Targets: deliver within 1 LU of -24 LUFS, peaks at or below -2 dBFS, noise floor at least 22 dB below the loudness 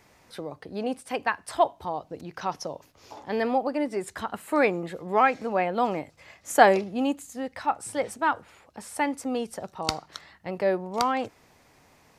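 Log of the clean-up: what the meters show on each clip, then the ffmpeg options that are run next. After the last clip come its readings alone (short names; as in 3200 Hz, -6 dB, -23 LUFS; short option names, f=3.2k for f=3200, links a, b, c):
loudness -27.0 LUFS; peak -2.0 dBFS; loudness target -24.0 LUFS
-> -af "volume=3dB,alimiter=limit=-2dB:level=0:latency=1"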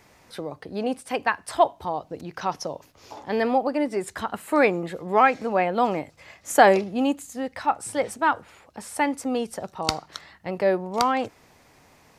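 loudness -24.5 LUFS; peak -2.0 dBFS; noise floor -57 dBFS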